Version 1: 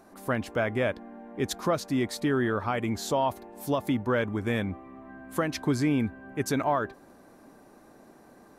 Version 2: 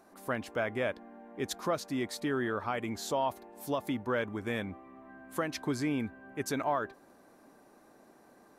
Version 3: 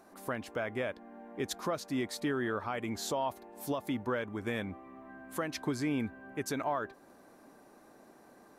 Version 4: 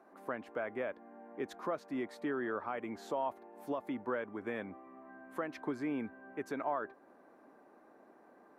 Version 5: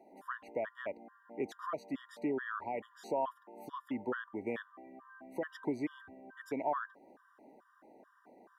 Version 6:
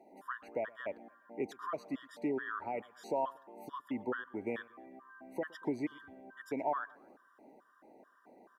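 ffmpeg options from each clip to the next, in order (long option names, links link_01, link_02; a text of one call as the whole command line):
ffmpeg -i in.wav -af "lowshelf=frequency=190:gain=-8,volume=-4dB" out.wav
ffmpeg -i in.wav -af "alimiter=level_in=0.5dB:limit=-24dB:level=0:latency=1:release=355,volume=-0.5dB,volume=1.5dB" out.wav
ffmpeg -i in.wav -filter_complex "[0:a]acrossover=split=210 2300:gain=0.178 1 0.141[link_01][link_02][link_03];[link_01][link_02][link_03]amix=inputs=3:normalize=0,volume=-2dB" out.wav
ffmpeg -i in.wav -af "afftfilt=real='re*gt(sin(2*PI*2.3*pts/sr)*(1-2*mod(floor(b*sr/1024/960),2)),0)':imag='im*gt(sin(2*PI*2.3*pts/sr)*(1-2*mod(floor(b*sr/1024/960),2)),0)':win_size=1024:overlap=0.75,volume=2.5dB" out.wav
ffmpeg -i in.wav -af "aecho=1:1:117|234|351:0.0668|0.0261|0.0102" out.wav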